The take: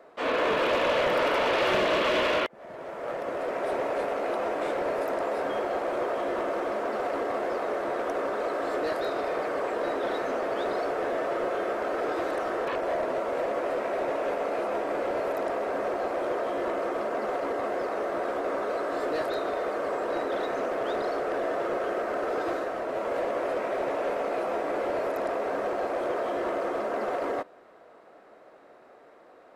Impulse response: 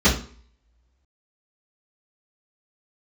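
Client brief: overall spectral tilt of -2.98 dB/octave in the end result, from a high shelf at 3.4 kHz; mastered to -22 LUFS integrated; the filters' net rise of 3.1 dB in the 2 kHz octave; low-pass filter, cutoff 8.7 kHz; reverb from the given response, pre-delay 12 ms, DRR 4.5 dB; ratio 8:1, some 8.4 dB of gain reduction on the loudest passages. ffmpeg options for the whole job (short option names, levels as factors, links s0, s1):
-filter_complex "[0:a]lowpass=8700,equalizer=f=2000:t=o:g=5,highshelf=f=3400:g=-3.5,acompressor=threshold=0.0316:ratio=8,asplit=2[s0][s1];[1:a]atrim=start_sample=2205,adelay=12[s2];[s1][s2]afir=irnorm=-1:irlink=0,volume=0.0631[s3];[s0][s3]amix=inputs=2:normalize=0,volume=2.99"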